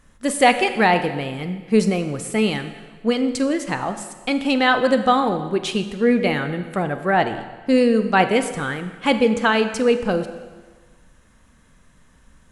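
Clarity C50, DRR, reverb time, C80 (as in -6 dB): 10.5 dB, 9.0 dB, 1.4 s, 12.0 dB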